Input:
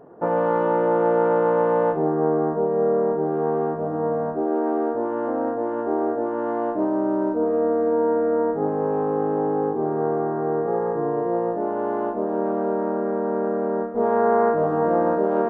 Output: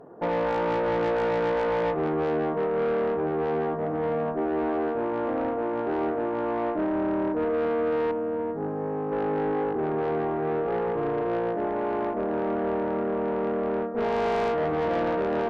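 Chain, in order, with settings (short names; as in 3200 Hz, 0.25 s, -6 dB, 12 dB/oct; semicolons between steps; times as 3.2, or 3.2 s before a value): 8.11–9.12 bell 710 Hz -7 dB 2.9 oct; tube stage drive 22 dB, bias 0.25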